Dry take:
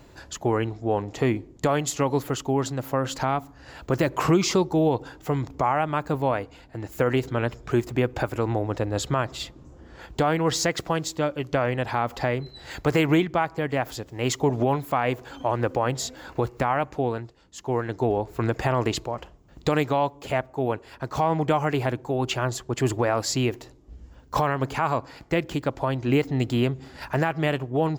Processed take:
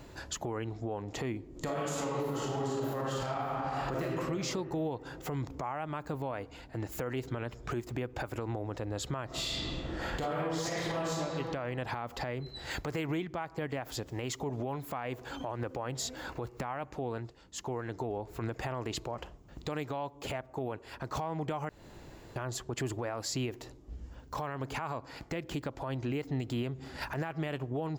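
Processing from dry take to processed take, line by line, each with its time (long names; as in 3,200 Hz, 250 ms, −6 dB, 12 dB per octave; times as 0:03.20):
0:01.50–0:04.03: thrown reverb, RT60 1.9 s, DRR −7.5 dB
0:09.26–0:11.11: thrown reverb, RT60 1.5 s, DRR −9.5 dB
0:21.69–0:22.36: fill with room tone
whole clip: downward compressor, threshold −30 dBFS; brickwall limiter −25.5 dBFS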